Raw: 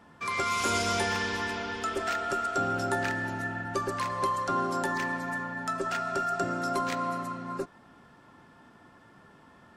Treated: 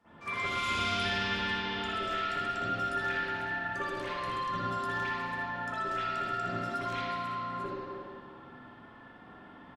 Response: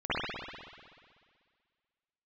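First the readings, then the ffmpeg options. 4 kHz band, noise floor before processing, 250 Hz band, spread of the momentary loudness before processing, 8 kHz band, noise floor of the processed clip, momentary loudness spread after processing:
+1.0 dB, -56 dBFS, -5.5 dB, 6 LU, under -10 dB, -53 dBFS, 20 LU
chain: -filter_complex "[0:a]aecho=1:1:60|79:0.376|0.355[a];[1:a]atrim=start_sample=2205,asetrate=48510,aresample=44100[b];[a][b]afir=irnorm=-1:irlink=0,acrossover=split=190|2000[c][d][e];[d]acompressor=threshold=-27dB:ratio=6[f];[c][f][e]amix=inputs=3:normalize=0,volume=-8.5dB"

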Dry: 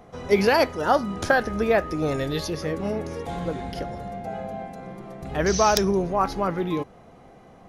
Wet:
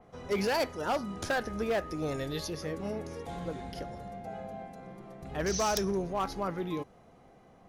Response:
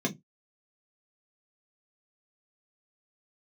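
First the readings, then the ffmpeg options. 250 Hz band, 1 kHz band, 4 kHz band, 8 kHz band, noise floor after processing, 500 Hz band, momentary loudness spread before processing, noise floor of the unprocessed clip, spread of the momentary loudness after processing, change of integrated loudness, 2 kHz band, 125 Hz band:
-9.0 dB, -10.0 dB, -7.0 dB, -6.0 dB, -58 dBFS, -9.5 dB, 15 LU, -50 dBFS, 14 LU, -9.5 dB, -10.0 dB, -8.5 dB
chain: -af "asoftclip=type=hard:threshold=-16dB,adynamicequalizer=threshold=0.00708:dfrequency=4200:dqfactor=0.7:tfrequency=4200:tqfactor=0.7:attack=5:release=100:ratio=0.375:range=2:mode=boostabove:tftype=highshelf,volume=-8.5dB"

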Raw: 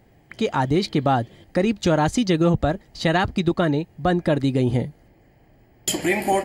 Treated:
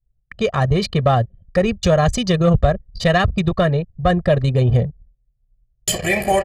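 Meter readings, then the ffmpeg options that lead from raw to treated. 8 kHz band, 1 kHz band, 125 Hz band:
+3.5 dB, +2.5 dB, +7.0 dB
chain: -af "tremolo=f=29:d=0.182,agate=range=-33dB:threshold=-46dB:ratio=3:detection=peak,lowshelf=f=100:g=9,aecho=1:1:1.7:0.91,anlmdn=25.1,aeval=exprs='0.794*(cos(1*acos(clip(val(0)/0.794,-1,1)))-cos(1*PI/2))+0.0562*(cos(5*acos(clip(val(0)/0.794,-1,1)))-cos(5*PI/2))':c=same"

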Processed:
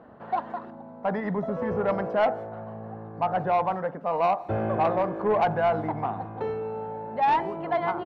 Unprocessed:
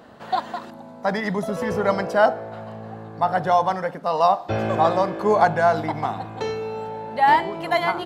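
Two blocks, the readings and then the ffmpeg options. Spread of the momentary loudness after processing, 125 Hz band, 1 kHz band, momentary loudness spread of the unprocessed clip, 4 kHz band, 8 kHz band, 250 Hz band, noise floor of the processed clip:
13 LU, -3.5 dB, -5.5 dB, 16 LU, -11.5 dB, n/a, -3.5 dB, -44 dBFS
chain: -filter_complex "[0:a]lowpass=1.4k,asoftclip=type=tanh:threshold=-13.5dB,asplit=2[a][b];[b]adelay=170,highpass=300,lowpass=3.4k,asoftclip=type=hard:threshold=-22dB,volume=-28dB[c];[a][c]amix=inputs=2:normalize=0,volume=-2.5dB"

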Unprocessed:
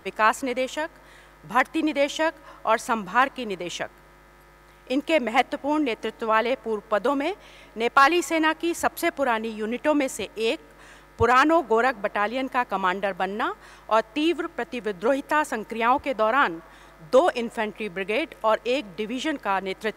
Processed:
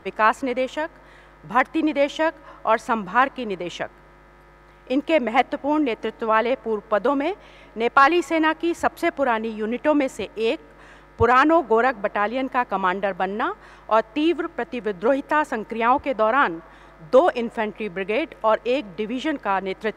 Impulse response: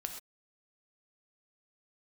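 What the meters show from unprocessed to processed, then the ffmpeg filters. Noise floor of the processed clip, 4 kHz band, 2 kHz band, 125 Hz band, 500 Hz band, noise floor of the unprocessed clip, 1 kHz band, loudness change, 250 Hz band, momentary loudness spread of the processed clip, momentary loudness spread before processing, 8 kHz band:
-49 dBFS, -1.5 dB, +1.0 dB, +3.0 dB, +3.0 dB, -52 dBFS, +2.5 dB, +2.0 dB, +3.0 dB, 10 LU, 10 LU, -7.0 dB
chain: -af "lowpass=f=2.3k:p=1,volume=3dB"

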